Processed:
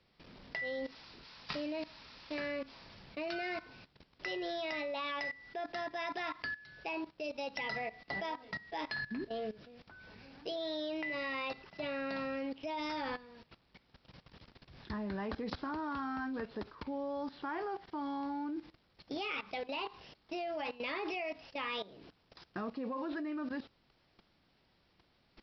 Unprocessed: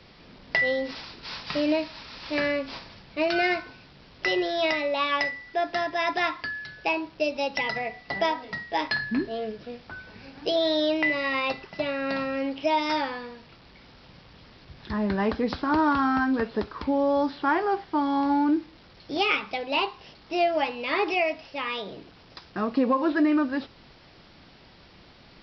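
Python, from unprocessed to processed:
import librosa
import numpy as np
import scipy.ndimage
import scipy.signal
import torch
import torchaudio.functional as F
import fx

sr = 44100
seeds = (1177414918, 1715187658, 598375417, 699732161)

y = fx.low_shelf(x, sr, hz=140.0, db=8.0, at=(12.61, 13.26))
y = fx.level_steps(y, sr, step_db=17)
y = F.gain(torch.from_numpy(y), -4.0).numpy()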